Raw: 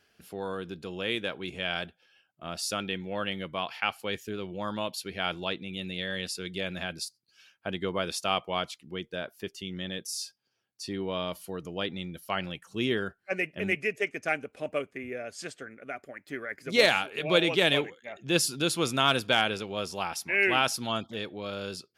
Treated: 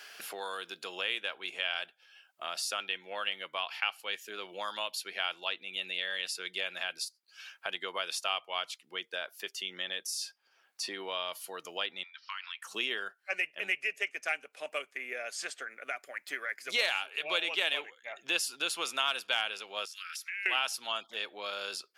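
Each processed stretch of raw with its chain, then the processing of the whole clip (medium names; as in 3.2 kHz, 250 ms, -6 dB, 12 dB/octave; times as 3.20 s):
12.03–12.62 s: Chebyshev band-pass 950–5300 Hz, order 5 + compression 3:1, threshold -45 dBFS
19.85–20.46 s: steep high-pass 1.3 kHz 72 dB/octave + compression 4:1, threshold -44 dBFS
whole clip: high-pass 830 Hz 12 dB/octave; dynamic bell 2.8 kHz, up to +6 dB, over -46 dBFS, Q 6.6; three bands compressed up and down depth 70%; trim -2 dB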